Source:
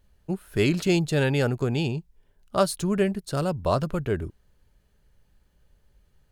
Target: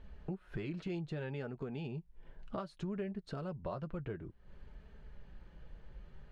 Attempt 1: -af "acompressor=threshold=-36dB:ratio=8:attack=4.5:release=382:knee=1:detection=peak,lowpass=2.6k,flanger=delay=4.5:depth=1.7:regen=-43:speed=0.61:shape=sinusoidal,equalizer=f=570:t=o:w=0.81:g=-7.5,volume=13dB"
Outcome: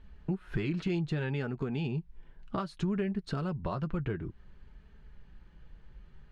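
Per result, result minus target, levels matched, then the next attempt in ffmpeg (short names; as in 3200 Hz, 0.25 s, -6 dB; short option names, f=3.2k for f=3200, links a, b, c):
compressor: peak gain reduction -9 dB; 500 Hz band -3.0 dB
-af "acompressor=threshold=-46.5dB:ratio=8:attack=4.5:release=382:knee=1:detection=peak,lowpass=2.6k,flanger=delay=4.5:depth=1.7:regen=-43:speed=0.61:shape=sinusoidal,equalizer=f=570:t=o:w=0.81:g=-7.5,volume=13dB"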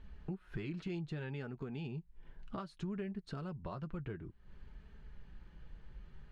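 500 Hz band -3.0 dB
-af "acompressor=threshold=-46.5dB:ratio=8:attack=4.5:release=382:knee=1:detection=peak,lowpass=2.6k,flanger=delay=4.5:depth=1.7:regen=-43:speed=0.61:shape=sinusoidal,volume=13dB"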